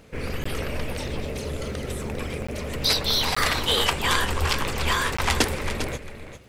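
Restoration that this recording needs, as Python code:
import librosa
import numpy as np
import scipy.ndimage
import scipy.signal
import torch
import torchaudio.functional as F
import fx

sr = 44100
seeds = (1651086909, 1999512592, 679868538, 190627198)

y = fx.fix_declip(x, sr, threshold_db=-7.5)
y = fx.fix_declick_ar(y, sr, threshold=6.5)
y = fx.fix_interpolate(y, sr, at_s=(0.44, 2.47, 3.35, 5.17), length_ms=15.0)
y = fx.fix_echo_inverse(y, sr, delay_ms=400, level_db=-10.5)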